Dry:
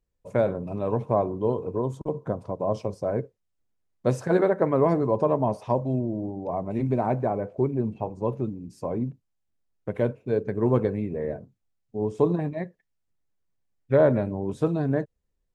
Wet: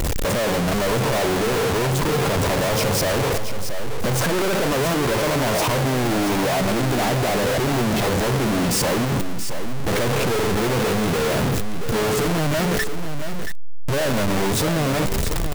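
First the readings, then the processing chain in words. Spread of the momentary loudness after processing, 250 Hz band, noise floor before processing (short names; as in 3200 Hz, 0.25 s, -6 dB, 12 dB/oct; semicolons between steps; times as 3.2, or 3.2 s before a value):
7 LU, +5.0 dB, -77 dBFS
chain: infinite clipping; on a send: echo 0.678 s -9 dB; on the sum: gain +6 dB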